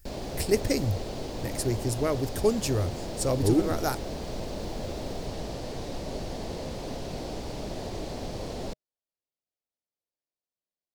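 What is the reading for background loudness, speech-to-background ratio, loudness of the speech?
-36.5 LUFS, 8.0 dB, -28.5 LUFS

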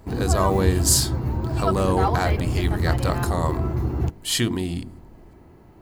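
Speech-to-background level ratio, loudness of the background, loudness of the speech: 0.5 dB, -25.0 LUFS, -24.5 LUFS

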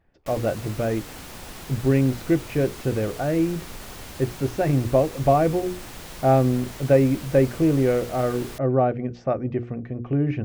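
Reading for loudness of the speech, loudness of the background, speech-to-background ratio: -23.0 LUFS, -38.5 LUFS, 15.5 dB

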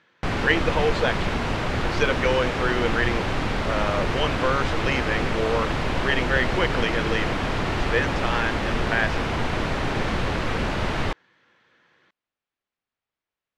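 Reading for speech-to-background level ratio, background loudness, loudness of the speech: 0.0 dB, -26.0 LUFS, -26.0 LUFS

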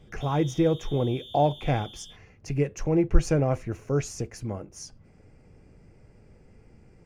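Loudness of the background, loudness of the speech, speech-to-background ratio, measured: -44.5 LUFS, -27.0 LUFS, 17.5 dB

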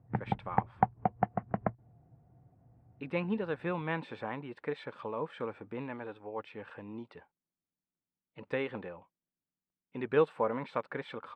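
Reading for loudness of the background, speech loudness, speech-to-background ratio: -34.0 LUFS, -37.0 LUFS, -3.0 dB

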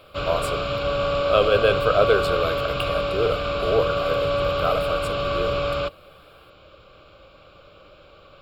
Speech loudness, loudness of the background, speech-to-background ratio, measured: -24.5 LUFS, -24.5 LUFS, 0.0 dB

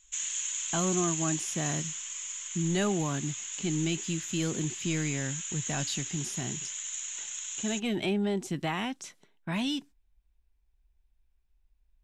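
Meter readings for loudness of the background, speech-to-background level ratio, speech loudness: -34.0 LUFS, 1.5 dB, -32.5 LUFS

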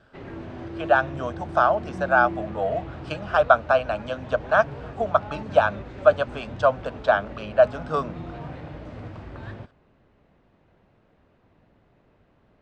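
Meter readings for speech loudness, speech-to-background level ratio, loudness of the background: -23.0 LUFS, 14.5 dB, -37.5 LUFS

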